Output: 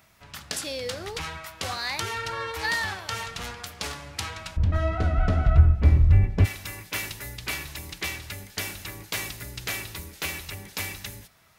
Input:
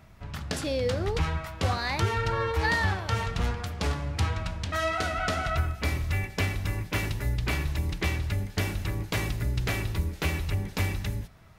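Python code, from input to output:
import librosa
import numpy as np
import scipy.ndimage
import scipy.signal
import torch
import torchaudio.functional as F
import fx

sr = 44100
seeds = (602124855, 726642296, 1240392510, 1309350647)

y = fx.tilt_eq(x, sr, slope=fx.steps((0.0, 3.0), (4.56, -4.0), (6.44, 3.0)))
y = y * librosa.db_to_amplitude(-2.5)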